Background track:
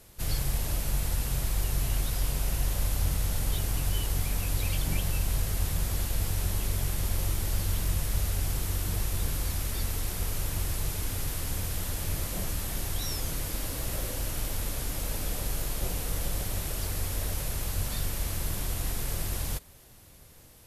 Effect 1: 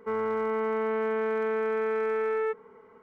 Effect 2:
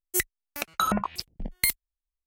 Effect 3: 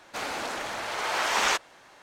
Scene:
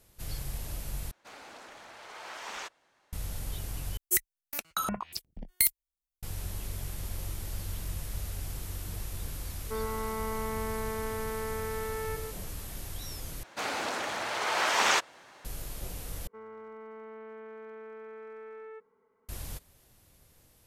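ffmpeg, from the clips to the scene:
ffmpeg -i bed.wav -i cue0.wav -i cue1.wav -i cue2.wav -filter_complex "[3:a]asplit=2[link_01][link_02];[1:a]asplit=2[link_03][link_04];[0:a]volume=-8dB[link_05];[2:a]highshelf=frequency=5700:gain=10.5[link_06];[link_03]aecho=1:1:149:0.398[link_07];[link_02]highpass=70[link_08];[link_05]asplit=5[link_09][link_10][link_11][link_12][link_13];[link_09]atrim=end=1.114[link_14];[link_01]atrim=end=2.02,asetpts=PTS-STARTPTS,volume=-16dB[link_15];[link_10]atrim=start=3.126:end=3.974[link_16];[link_06]atrim=end=2.26,asetpts=PTS-STARTPTS,volume=-8dB[link_17];[link_11]atrim=start=6.226:end=13.434[link_18];[link_08]atrim=end=2.02,asetpts=PTS-STARTPTS,volume=-0.5dB[link_19];[link_12]atrim=start=15.446:end=16.274[link_20];[link_04]atrim=end=3.02,asetpts=PTS-STARTPTS,volume=-17.5dB[link_21];[link_13]atrim=start=19.286[link_22];[link_07]atrim=end=3.02,asetpts=PTS-STARTPTS,volume=-5.5dB,afade=type=in:duration=0.004:curve=hsin,afade=type=out:start_time=3.016:duration=0.004:curve=hsin,adelay=9640[link_23];[link_14][link_15]acrossfade=duration=0.004:curve1=hsin:curve2=hsin[link_24];[link_24][link_16]acrossfade=duration=0.004:curve1=hsin:curve2=hsin[link_25];[link_25][link_17]acrossfade=duration=0.004:curve1=hsin:curve2=hsin[link_26];[link_26][link_18]acrossfade=duration=0.004:curve1=hsin:curve2=hsin[link_27];[link_27][link_19]acrossfade=duration=0.004:curve1=hsin:curve2=hsin[link_28];[link_28][link_20]acrossfade=duration=0.004:curve1=hsin:curve2=hsin[link_29];[link_29][link_21]acrossfade=duration=0.004:curve1=hsin:curve2=hsin[link_30];[link_30][link_22]acrossfade=duration=0.004:curve1=hsin:curve2=hsin[link_31];[link_31][link_23]amix=inputs=2:normalize=0" out.wav

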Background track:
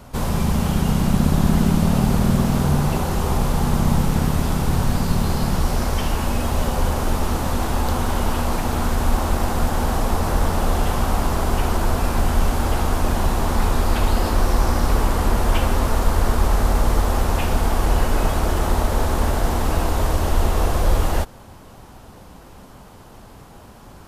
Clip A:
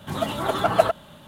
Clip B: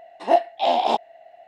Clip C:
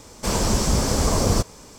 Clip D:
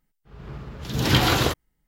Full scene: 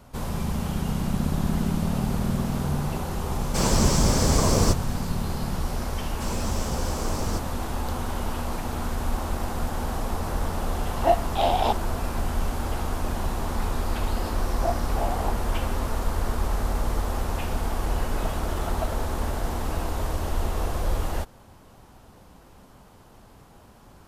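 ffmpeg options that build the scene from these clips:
ffmpeg -i bed.wav -i cue0.wav -i cue1.wav -i cue2.wav -filter_complex "[3:a]asplit=2[link_01][link_02];[2:a]asplit=2[link_03][link_04];[0:a]volume=-8dB[link_05];[link_04]lowpass=1400[link_06];[link_01]atrim=end=1.78,asetpts=PTS-STARTPTS,volume=-1dB,afade=type=in:duration=0.004:curve=hsin,afade=type=out:start_time=1.776:duration=0.004:curve=hsin,adelay=3310[link_07];[link_02]atrim=end=1.78,asetpts=PTS-STARTPTS,volume=-11.5dB,afade=type=in:duration=0.004:curve=hsin,afade=type=out:start_time=1.776:duration=0.004:curve=hsin,adelay=5970[link_08];[link_03]atrim=end=1.47,asetpts=PTS-STARTPTS,volume=-3dB,afade=type=in:duration=0.004:curve=hsin,afade=type=out:start_time=1.466:duration=0.004:curve=hsin,adelay=10760[link_09];[link_06]atrim=end=1.47,asetpts=PTS-STARTPTS,volume=-10.5dB,afade=type=in:duration=0.004:curve=hsin,afade=type=out:start_time=1.466:duration=0.004:curve=hsin,adelay=14340[link_10];[1:a]atrim=end=1.27,asetpts=PTS-STARTPTS,volume=-16dB,afade=type=in:duration=0.004:curve=hsin,afade=type=out:start_time=1.266:duration=0.004:curve=hsin,adelay=18030[link_11];[link_05][link_07][link_08][link_09][link_10][link_11]amix=inputs=6:normalize=0" out.wav

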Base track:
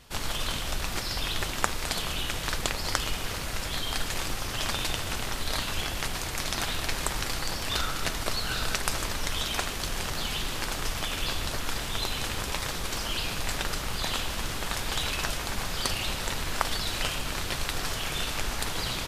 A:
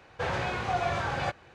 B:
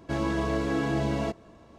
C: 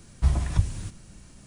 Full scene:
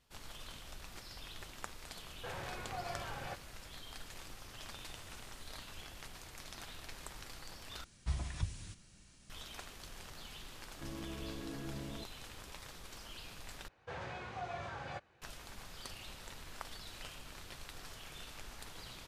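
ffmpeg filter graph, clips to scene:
ffmpeg -i bed.wav -i cue0.wav -i cue1.wav -i cue2.wav -filter_complex "[1:a]asplit=2[link_01][link_02];[3:a]asplit=2[link_03][link_04];[0:a]volume=-19dB[link_05];[link_03]highpass=1500[link_06];[link_04]equalizer=frequency=3700:width_type=o:width=2.8:gain=9.5[link_07];[2:a]acrossover=split=440|3000[link_08][link_09][link_10];[link_09]acompressor=threshold=-39dB:ratio=6:attack=3.2:release=140:knee=2.83:detection=peak[link_11];[link_08][link_11][link_10]amix=inputs=3:normalize=0[link_12];[link_05]asplit=3[link_13][link_14][link_15];[link_13]atrim=end=7.844[link_16];[link_07]atrim=end=1.46,asetpts=PTS-STARTPTS,volume=-15dB[link_17];[link_14]atrim=start=9.296:end=13.684[link_18];[link_02]atrim=end=1.54,asetpts=PTS-STARTPTS,volume=-14dB[link_19];[link_15]atrim=start=15.216[link_20];[link_01]atrim=end=1.54,asetpts=PTS-STARTPTS,volume=-14dB,afade=type=in:duration=0.004:curve=hsin,afade=type=out:start_time=1.536:duration=0.004:curve=hsin,adelay=2040[link_21];[link_06]atrim=end=1.46,asetpts=PTS-STARTPTS,volume=-16.5dB,afade=type=in:duration=0.004:curve=hsin,afade=type=out:start_time=1.456:duration=0.004:curve=hsin,adelay=4620[link_22];[link_12]atrim=end=1.78,asetpts=PTS-STARTPTS,volume=-16dB,afade=type=in:duration=0.004:curve=hsin,afade=type=out:start_time=1.776:duration=0.004:curve=hsin,adelay=10720[link_23];[link_16][link_17]acrossfade=duration=0.004:curve1=hsin:curve2=hsin[link_24];[link_24][link_18]acrossfade=duration=0.004:curve1=hsin:curve2=hsin[link_25];[link_25][link_19]acrossfade=duration=0.004:curve1=hsin:curve2=hsin[link_26];[link_26][link_20]acrossfade=duration=0.004:curve1=hsin:curve2=hsin[link_27];[link_27][link_21][link_22][link_23]amix=inputs=4:normalize=0" out.wav

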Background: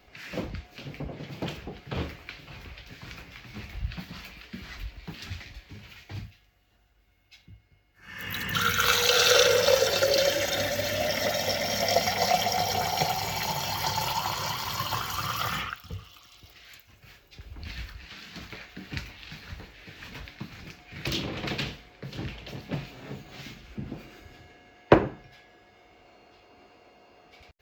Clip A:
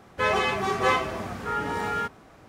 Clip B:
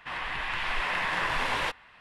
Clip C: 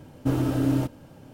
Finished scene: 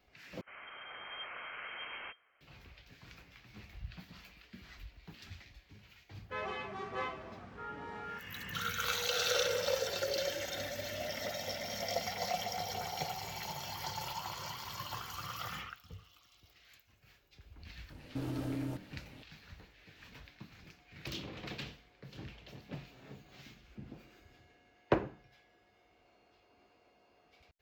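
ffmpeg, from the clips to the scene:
ffmpeg -i bed.wav -i cue0.wav -i cue1.wav -i cue2.wav -filter_complex "[0:a]volume=-12dB[link_01];[2:a]lowpass=frequency=2700:width_type=q:width=0.5098,lowpass=frequency=2700:width_type=q:width=0.6013,lowpass=frequency=2700:width_type=q:width=0.9,lowpass=frequency=2700:width_type=q:width=2.563,afreqshift=-3200[link_02];[1:a]lowpass=4300[link_03];[3:a]alimiter=limit=-21.5dB:level=0:latency=1:release=316[link_04];[link_01]asplit=2[link_05][link_06];[link_05]atrim=end=0.414[link_07];[link_02]atrim=end=2,asetpts=PTS-STARTPTS,volume=-16dB[link_08];[link_06]atrim=start=2.406[link_09];[link_03]atrim=end=2.48,asetpts=PTS-STARTPTS,volume=-16dB,afade=type=in:duration=0.004:curve=hsin,afade=type=out:start_time=2.476:duration=0.004:curve=hsin,adelay=6120[link_10];[link_04]atrim=end=1.33,asetpts=PTS-STARTPTS,volume=-7.5dB,afade=type=in:duration=0.004:curve=hsin,afade=type=out:start_time=1.326:duration=0.004:curve=hsin,adelay=17900[link_11];[link_07][link_08]acrossfade=duration=0.004:curve1=hsin:curve2=hsin[link_12];[link_12][link_09]acrossfade=duration=0.004:curve1=hsin:curve2=hsin[link_13];[link_13][link_10][link_11]amix=inputs=3:normalize=0" out.wav

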